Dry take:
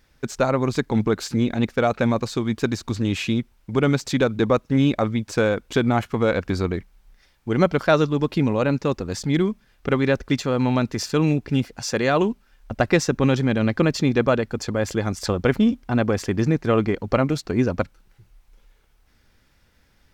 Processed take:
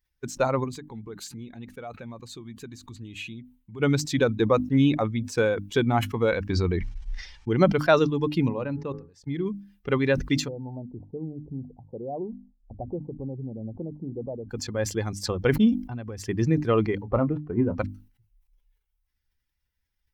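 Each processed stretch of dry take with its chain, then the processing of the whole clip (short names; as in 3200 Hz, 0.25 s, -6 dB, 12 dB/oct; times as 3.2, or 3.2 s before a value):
0.64–3.8 bell 5300 Hz -6 dB 0.26 oct + compressor 2.5:1, threshold -31 dBFS
6.49–7.6 gate -51 dBFS, range -17 dB + LPF 7200 Hz 24 dB/oct + fast leveller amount 70%
8.48–9.46 high shelf 3800 Hz -10.5 dB + level quantiser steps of 23 dB + de-hum 105.2 Hz, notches 18
10.48–14.5 steep low-pass 840 Hz 48 dB/oct + compressor 2.5:1, threshold -26 dBFS
15.79–16.29 bell 76 Hz +6 dB 1.2 oct + compressor 4:1, threshold -24 dBFS
17.02–17.77 switching dead time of 0.11 ms + LPF 1400 Hz + doubler 27 ms -11 dB
whole clip: per-bin expansion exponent 1.5; notches 50/100/150/200/250/300 Hz; sustainer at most 130 dB/s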